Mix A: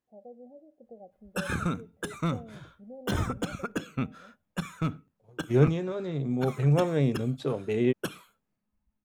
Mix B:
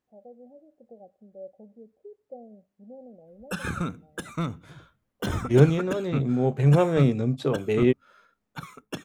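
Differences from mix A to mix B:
second voice +4.5 dB
background: entry +2.15 s

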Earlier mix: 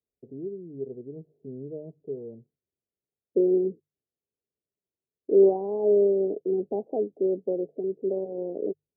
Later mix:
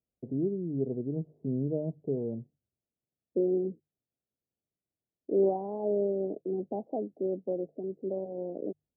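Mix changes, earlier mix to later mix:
first voice +10.5 dB
master: add parametric band 420 Hz −10 dB 0.49 octaves

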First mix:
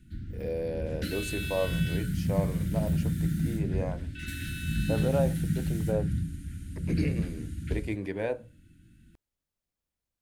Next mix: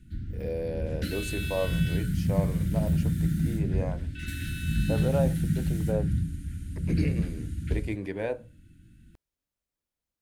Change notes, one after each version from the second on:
second voice: add high-pass filter 200 Hz 24 dB per octave
background: add low-shelf EQ 140 Hz +4.5 dB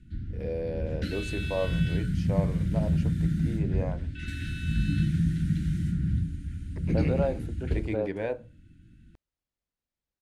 second voice: entry +2.05 s
master: add high-frequency loss of the air 69 metres

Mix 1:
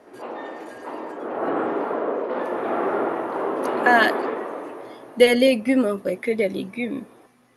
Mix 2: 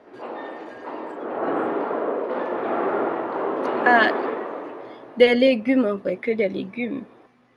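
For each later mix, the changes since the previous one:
second voice: add low-pass filter 4,000 Hz 12 dB per octave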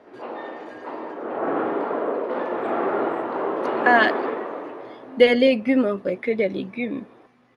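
first voice: entry +1.55 s

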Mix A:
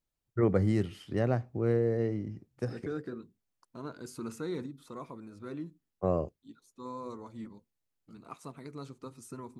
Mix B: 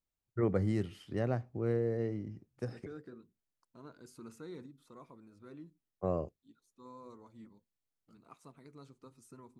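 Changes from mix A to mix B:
first voice −4.5 dB
second voice −10.5 dB

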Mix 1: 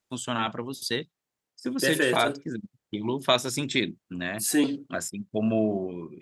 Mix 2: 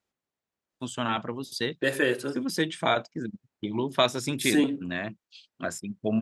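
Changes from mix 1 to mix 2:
first voice: entry +0.70 s
master: add high-shelf EQ 6,100 Hz −7.5 dB

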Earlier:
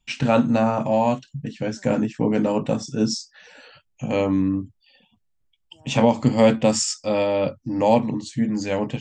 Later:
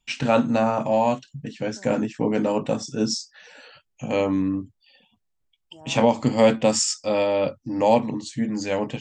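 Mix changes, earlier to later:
first voice: add bass and treble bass −5 dB, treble +1 dB
second voice +9.0 dB

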